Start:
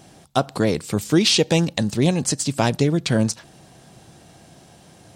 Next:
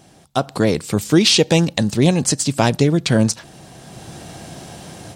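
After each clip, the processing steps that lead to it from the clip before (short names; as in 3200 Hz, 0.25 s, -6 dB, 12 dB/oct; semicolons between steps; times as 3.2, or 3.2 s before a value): AGC gain up to 13.5 dB; gain -1 dB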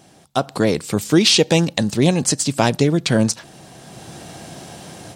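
low shelf 78 Hz -9 dB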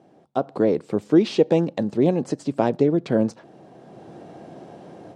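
band-pass 410 Hz, Q 0.99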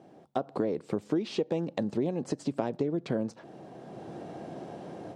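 compressor 5:1, threshold -27 dBFS, peak gain reduction 15 dB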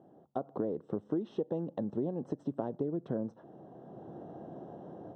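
running mean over 19 samples; gain -4 dB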